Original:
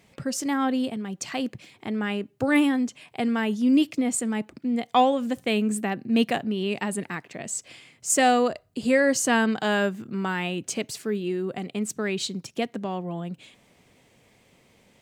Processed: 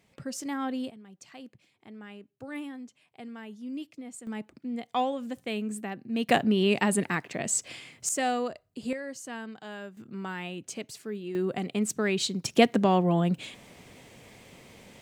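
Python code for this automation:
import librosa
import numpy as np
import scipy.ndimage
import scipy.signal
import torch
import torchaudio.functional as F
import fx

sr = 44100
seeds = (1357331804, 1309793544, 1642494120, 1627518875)

y = fx.gain(x, sr, db=fx.steps((0.0, -7.5), (0.91, -17.5), (4.27, -8.5), (6.29, 3.5), (8.09, -8.5), (8.93, -17.5), (9.97, -8.5), (11.35, 0.5), (12.45, 8.0)))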